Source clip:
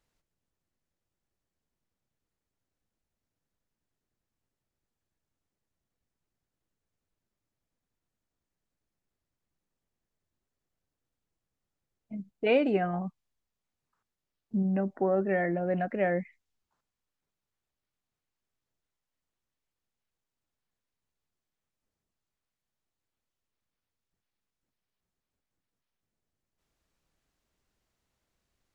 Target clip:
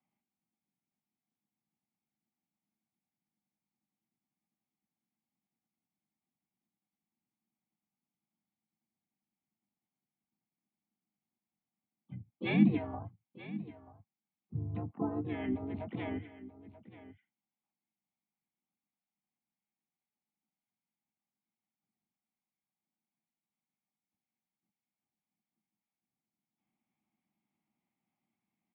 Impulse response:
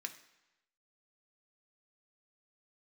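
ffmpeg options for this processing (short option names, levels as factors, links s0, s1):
-filter_complex "[0:a]asplit=3[s0][s1][s2];[s0]bandpass=f=300:t=q:w=8,volume=1[s3];[s1]bandpass=f=870:t=q:w=8,volume=0.501[s4];[s2]bandpass=f=2240:t=q:w=8,volume=0.355[s5];[s3][s4][s5]amix=inputs=3:normalize=0,asplit=2[s6][s7];[s7]aecho=0:1:935:0.168[s8];[s6][s8]amix=inputs=2:normalize=0,highpass=f=180:t=q:w=0.5412,highpass=f=180:t=q:w=1.307,lowpass=f=3000:t=q:w=0.5176,lowpass=f=3000:t=q:w=0.7071,lowpass=f=3000:t=q:w=1.932,afreqshift=-87,asplit=4[s9][s10][s11][s12];[s10]asetrate=33038,aresample=44100,atempo=1.33484,volume=0.251[s13];[s11]asetrate=52444,aresample=44100,atempo=0.840896,volume=0.282[s14];[s12]asetrate=66075,aresample=44100,atempo=0.66742,volume=0.355[s15];[s9][s13][s14][s15]amix=inputs=4:normalize=0,volume=2.24"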